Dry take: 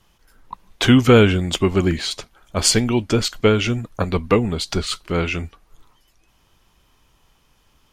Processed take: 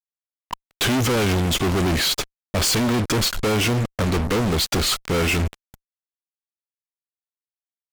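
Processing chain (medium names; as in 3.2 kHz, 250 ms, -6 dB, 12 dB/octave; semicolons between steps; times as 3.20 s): fuzz box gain 40 dB, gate -38 dBFS; trim -5.5 dB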